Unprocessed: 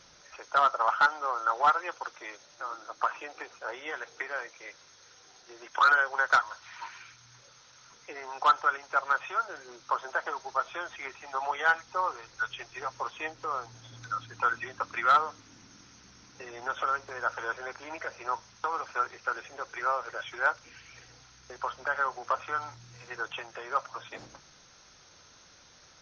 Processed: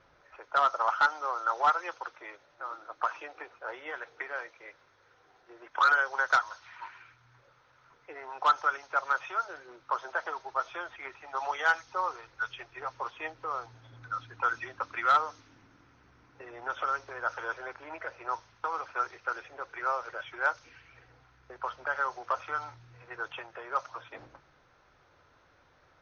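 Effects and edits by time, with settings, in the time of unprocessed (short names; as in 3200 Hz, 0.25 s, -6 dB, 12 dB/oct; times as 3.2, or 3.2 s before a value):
11.12–11.79 high shelf 5300 Hz +8.5 dB
whole clip: low-pass opened by the level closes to 1700 Hz, open at -22 dBFS; bell 200 Hz -10.5 dB 0.39 oct; gain -1.5 dB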